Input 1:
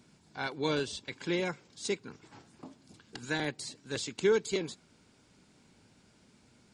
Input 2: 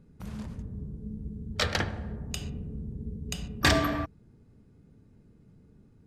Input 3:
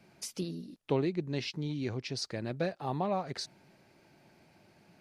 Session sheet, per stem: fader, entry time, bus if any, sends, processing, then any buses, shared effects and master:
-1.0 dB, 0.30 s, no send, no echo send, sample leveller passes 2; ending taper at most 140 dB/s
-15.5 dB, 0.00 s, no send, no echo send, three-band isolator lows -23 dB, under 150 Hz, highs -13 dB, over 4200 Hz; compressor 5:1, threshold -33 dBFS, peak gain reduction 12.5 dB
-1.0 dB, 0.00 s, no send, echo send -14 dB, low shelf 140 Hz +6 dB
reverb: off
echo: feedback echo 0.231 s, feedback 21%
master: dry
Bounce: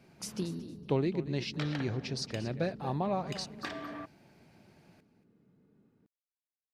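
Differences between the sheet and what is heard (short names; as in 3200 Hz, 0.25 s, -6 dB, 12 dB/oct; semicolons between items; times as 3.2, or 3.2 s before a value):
stem 1: muted; stem 2 -15.5 dB -> -5.0 dB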